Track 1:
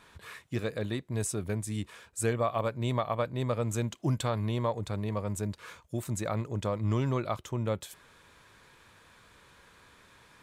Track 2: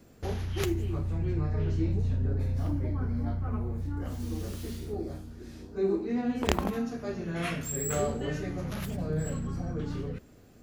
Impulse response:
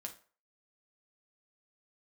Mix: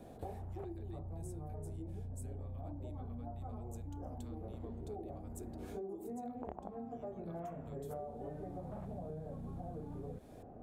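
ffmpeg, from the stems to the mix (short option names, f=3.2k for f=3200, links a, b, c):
-filter_complex "[0:a]acompressor=threshold=-37dB:ratio=6,aemphasis=mode=production:type=50fm,volume=-17dB,asplit=2[a][b];[b]volume=-8dB[c];[1:a]acompressor=threshold=-47dB:ratio=1.5,lowpass=f=750:t=q:w=3.7,volume=1dB[d];[2:a]atrim=start_sample=2205[e];[c][e]afir=irnorm=-1:irlink=0[f];[a][d][f]amix=inputs=3:normalize=0,acompressor=threshold=-41dB:ratio=10"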